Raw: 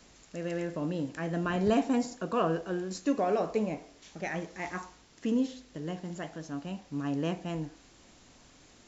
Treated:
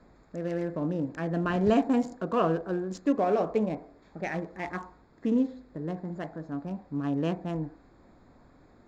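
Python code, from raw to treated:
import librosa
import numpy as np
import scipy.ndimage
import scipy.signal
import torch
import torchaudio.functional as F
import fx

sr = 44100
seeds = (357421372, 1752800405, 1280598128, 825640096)

y = fx.wiener(x, sr, points=15)
y = fx.high_shelf(y, sr, hz=6100.0, db=-9.0)
y = F.gain(torch.from_numpy(y), 3.0).numpy()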